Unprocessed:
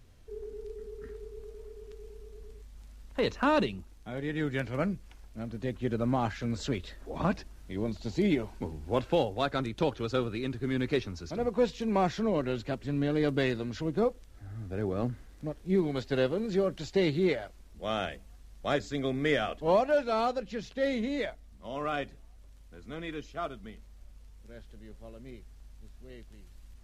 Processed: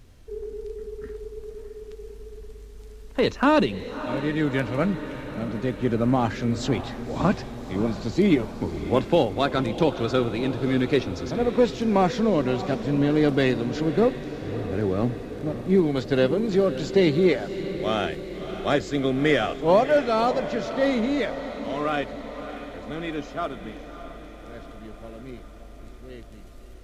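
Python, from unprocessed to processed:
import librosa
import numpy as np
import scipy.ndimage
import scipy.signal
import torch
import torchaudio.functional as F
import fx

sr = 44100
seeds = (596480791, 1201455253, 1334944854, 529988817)

p1 = fx.peak_eq(x, sr, hz=300.0, db=2.5, octaves=0.92)
p2 = p1 + fx.echo_diffused(p1, sr, ms=607, feedback_pct=64, wet_db=-11.5, dry=0)
y = p2 * 10.0 ** (6.0 / 20.0)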